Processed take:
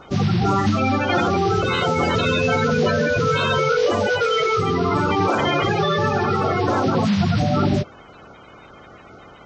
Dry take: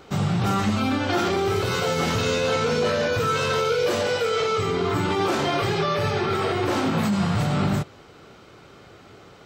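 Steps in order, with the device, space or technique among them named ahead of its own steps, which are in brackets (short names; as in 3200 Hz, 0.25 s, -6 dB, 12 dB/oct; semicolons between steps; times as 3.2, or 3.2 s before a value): clip after many re-uploads (LPF 5400 Hz 24 dB/oct; bin magnitudes rounded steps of 30 dB); gain +4.5 dB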